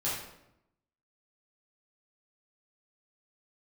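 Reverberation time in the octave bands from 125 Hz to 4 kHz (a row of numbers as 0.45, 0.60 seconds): 1.1, 1.0, 0.85, 0.80, 0.70, 0.60 seconds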